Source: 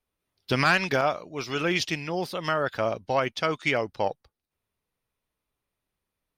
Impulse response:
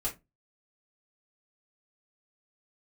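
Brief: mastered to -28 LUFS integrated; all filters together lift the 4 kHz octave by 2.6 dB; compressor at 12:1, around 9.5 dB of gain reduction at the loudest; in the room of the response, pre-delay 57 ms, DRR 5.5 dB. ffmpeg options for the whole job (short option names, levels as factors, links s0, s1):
-filter_complex "[0:a]equalizer=f=4000:t=o:g=3.5,acompressor=threshold=0.0447:ratio=12,asplit=2[s0][s1];[1:a]atrim=start_sample=2205,adelay=57[s2];[s1][s2]afir=irnorm=-1:irlink=0,volume=0.355[s3];[s0][s3]amix=inputs=2:normalize=0,volume=1.5"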